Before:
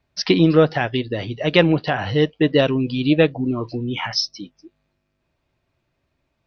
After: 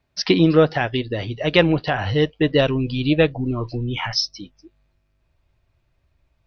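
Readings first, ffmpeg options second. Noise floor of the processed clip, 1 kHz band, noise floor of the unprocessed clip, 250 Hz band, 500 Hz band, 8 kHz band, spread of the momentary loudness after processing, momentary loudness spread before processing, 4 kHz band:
-68 dBFS, 0.0 dB, -73 dBFS, -1.5 dB, -0.5 dB, n/a, 10 LU, 10 LU, 0.0 dB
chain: -af "asubboost=boost=5.5:cutoff=90"

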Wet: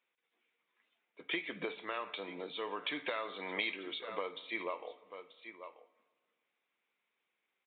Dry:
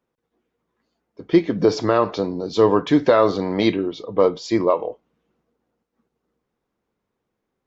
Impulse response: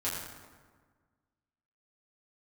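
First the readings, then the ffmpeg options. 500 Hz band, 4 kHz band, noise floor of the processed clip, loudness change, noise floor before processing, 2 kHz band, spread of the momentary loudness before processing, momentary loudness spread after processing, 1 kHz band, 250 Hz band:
-24.0 dB, -9.0 dB, under -85 dBFS, -20.5 dB, -79 dBFS, -6.5 dB, 8 LU, 15 LU, -18.5 dB, -27.0 dB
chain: -filter_complex "[0:a]highpass=f=130:w=0.5412,highpass=f=130:w=1.3066,aderivative,aecho=1:1:936:0.0891,acompressor=threshold=-46dB:ratio=6,aresample=8000,aresample=44100,equalizer=f=2.3k:t=o:w=0.46:g=9,asplit=2[a][b];[1:a]atrim=start_sample=2205,adelay=47[c];[b][c]afir=irnorm=-1:irlink=0,volume=-22.5dB[d];[a][d]amix=inputs=2:normalize=0,volume=9.5dB"

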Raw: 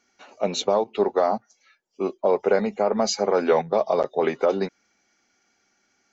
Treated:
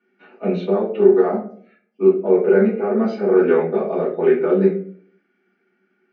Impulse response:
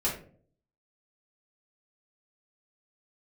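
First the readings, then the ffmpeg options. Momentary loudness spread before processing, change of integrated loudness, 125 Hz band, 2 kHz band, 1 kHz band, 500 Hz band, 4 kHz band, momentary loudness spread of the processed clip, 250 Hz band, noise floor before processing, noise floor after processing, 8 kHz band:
8 LU, +5.5 dB, +10.0 dB, +3.0 dB, -3.5 dB, +6.0 dB, under -10 dB, 11 LU, +10.5 dB, -69 dBFS, -68 dBFS, n/a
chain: -filter_complex "[0:a]highpass=f=160:w=0.5412,highpass=f=160:w=1.3066,equalizer=f=190:t=q:w=4:g=7,equalizer=f=370:t=q:w=4:g=9,equalizer=f=620:t=q:w=4:g=-7,equalizer=f=970:t=q:w=4:g=-8,equalizer=f=1.5k:t=q:w=4:g=5,lowpass=f=2.8k:w=0.5412,lowpass=f=2.8k:w=1.3066,bandreject=f=415.6:t=h:w=4,bandreject=f=831.2:t=h:w=4,bandreject=f=1.2468k:t=h:w=4,bandreject=f=1.6624k:t=h:w=4,bandreject=f=2.078k:t=h:w=4,bandreject=f=2.4936k:t=h:w=4,bandreject=f=2.9092k:t=h:w=4,bandreject=f=3.3248k:t=h:w=4,bandreject=f=3.7404k:t=h:w=4,bandreject=f=4.156k:t=h:w=4,bandreject=f=4.5716k:t=h:w=4,bandreject=f=4.9872k:t=h:w=4,bandreject=f=5.4028k:t=h:w=4,bandreject=f=5.8184k:t=h:w=4,bandreject=f=6.234k:t=h:w=4,bandreject=f=6.6496k:t=h:w=4,bandreject=f=7.0652k:t=h:w=4,bandreject=f=7.4808k:t=h:w=4,bandreject=f=7.8964k:t=h:w=4,bandreject=f=8.312k:t=h:w=4,bandreject=f=8.7276k:t=h:w=4,bandreject=f=9.1432k:t=h:w=4,bandreject=f=9.5588k:t=h:w=4,bandreject=f=9.9744k:t=h:w=4,bandreject=f=10.39k:t=h:w=4,bandreject=f=10.8056k:t=h:w=4,bandreject=f=11.2212k:t=h:w=4,bandreject=f=11.6368k:t=h:w=4[a];[1:a]atrim=start_sample=2205[b];[a][b]afir=irnorm=-1:irlink=0,volume=-7dB"

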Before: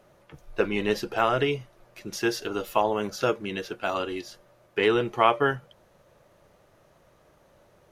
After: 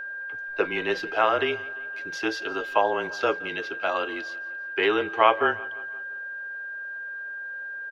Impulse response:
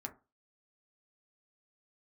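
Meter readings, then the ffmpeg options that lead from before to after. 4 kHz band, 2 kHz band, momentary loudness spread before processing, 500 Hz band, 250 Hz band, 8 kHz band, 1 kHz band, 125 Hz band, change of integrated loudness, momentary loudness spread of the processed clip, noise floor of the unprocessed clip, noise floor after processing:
+0.5 dB, +7.0 dB, 14 LU, 0.0 dB, -3.0 dB, n/a, +2.0 dB, -11.0 dB, 0.0 dB, 12 LU, -61 dBFS, -36 dBFS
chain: -filter_complex "[0:a]acrossover=split=390 5000:gain=0.158 1 0.0891[a][b][c];[a][b][c]amix=inputs=3:normalize=0,afreqshift=-26,aeval=exprs='val(0)+0.0178*sin(2*PI*1600*n/s)':c=same,asplit=2[d][e];[e]aecho=0:1:172|344|516|688:0.0891|0.0472|0.025|0.0133[f];[d][f]amix=inputs=2:normalize=0,volume=2.5dB"

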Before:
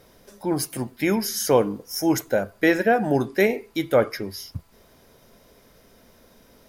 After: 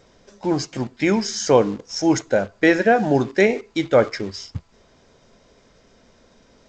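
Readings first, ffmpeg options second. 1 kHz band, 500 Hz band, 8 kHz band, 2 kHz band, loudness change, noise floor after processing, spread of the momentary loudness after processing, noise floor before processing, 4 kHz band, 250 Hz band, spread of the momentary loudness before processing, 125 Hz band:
+3.0 dB, +3.0 dB, +0.5 dB, +3.0 dB, +3.0 dB, -56 dBFS, 13 LU, -56 dBFS, +3.0 dB, +3.0 dB, 12 LU, +3.0 dB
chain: -filter_complex "[0:a]asplit=2[a][b];[b]acrusher=bits=5:mix=0:aa=0.000001,volume=-7dB[c];[a][c]amix=inputs=2:normalize=0" -ar 16000 -c:a g722

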